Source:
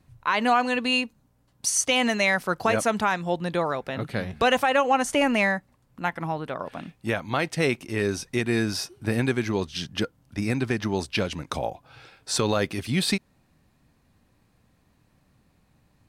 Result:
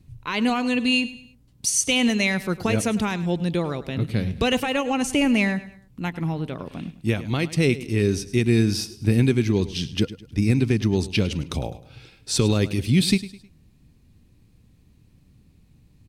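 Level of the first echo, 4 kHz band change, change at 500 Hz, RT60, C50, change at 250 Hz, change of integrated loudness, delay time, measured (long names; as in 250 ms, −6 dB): −16.0 dB, +2.0 dB, 0.0 dB, no reverb audible, no reverb audible, +6.0 dB, +2.5 dB, 104 ms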